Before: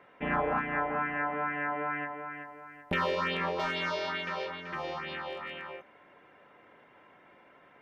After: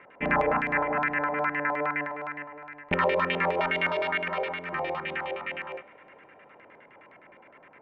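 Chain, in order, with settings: notch 720 Hz, Q 12; LFO low-pass square 9.7 Hz 750–2300 Hz; on a send: reverb RT60 4.6 s, pre-delay 33 ms, DRR 21.5 dB; on the sum: gain +3 dB

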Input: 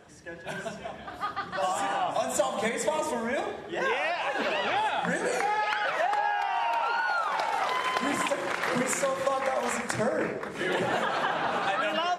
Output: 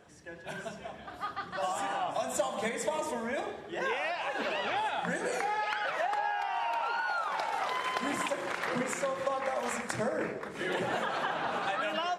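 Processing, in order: 8.65–9.48 high shelf 7300 Hz -8.5 dB; gain -4.5 dB

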